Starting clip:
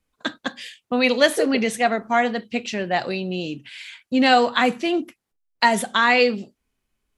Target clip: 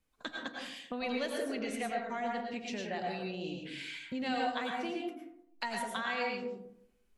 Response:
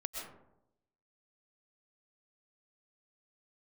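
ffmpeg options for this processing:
-filter_complex "[0:a]acompressor=threshold=0.0112:ratio=2.5[s0];[1:a]atrim=start_sample=2205,asetrate=52920,aresample=44100[s1];[s0][s1]afir=irnorm=-1:irlink=0"

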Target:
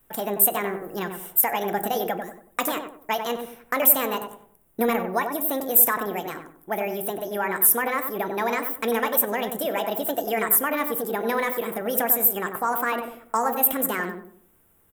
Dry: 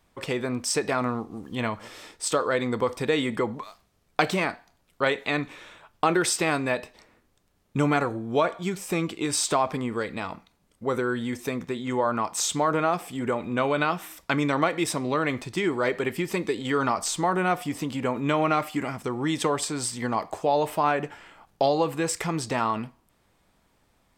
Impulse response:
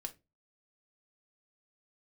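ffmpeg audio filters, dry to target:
-filter_complex "[0:a]equalizer=f=2700:t=o:w=0.23:g=-13.5,asetrate=71442,aresample=44100,asplit=2[s0][s1];[1:a]atrim=start_sample=2205,lowpass=7300,highshelf=f=2100:g=-11.5[s2];[s1][s2]afir=irnorm=-1:irlink=0,volume=1.58[s3];[s0][s3]amix=inputs=2:normalize=0,aexciter=amount=5.9:drive=9:freq=8300,asplit=2[s4][s5];[s5]adelay=94,lowpass=f=1100:p=1,volume=0.562,asplit=2[s6][s7];[s7]adelay=94,lowpass=f=1100:p=1,volume=0.39,asplit=2[s8][s9];[s9]adelay=94,lowpass=f=1100:p=1,volume=0.39,asplit=2[s10][s11];[s11]adelay=94,lowpass=f=1100:p=1,volume=0.39,asplit=2[s12][s13];[s13]adelay=94,lowpass=f=1100:p=1,volume=0.39[s14];[s6][s8][s10][s12][s14]amix=inputs=5:normalize=0[s15];[s4][s15]amix=inputs=2:normalize=0,volume=0.473"

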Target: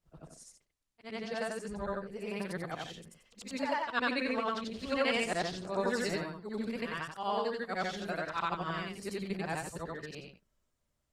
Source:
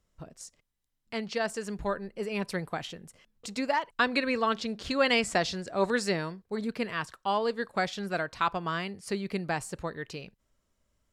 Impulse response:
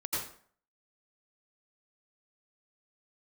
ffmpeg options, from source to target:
-af "afftfilt=real='re':imag='-im':win_size=8192:overlap=0.75" -ar 48000 -c:a libopus -b:a 24k

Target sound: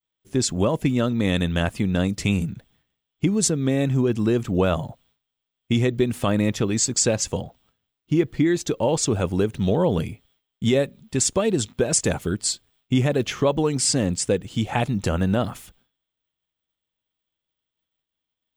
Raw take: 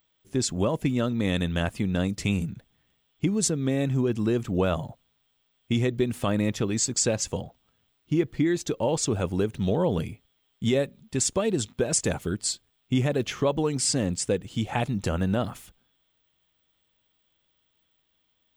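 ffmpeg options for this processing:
-af "agate=range=0.0224:threshold=0.001:ratio=3:detection=peak,volume=1.58"

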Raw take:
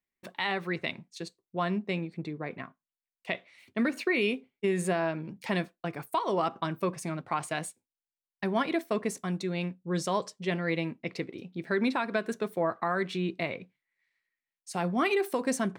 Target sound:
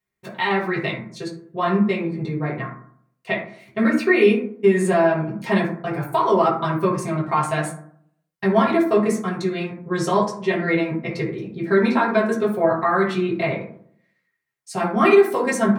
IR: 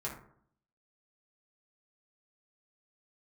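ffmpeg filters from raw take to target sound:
-filter_complex "[1:a]atrim=start_sample=2205[s0];[0:a][s0]afir=irnorm=-1:irlink=0,volume=2.37"

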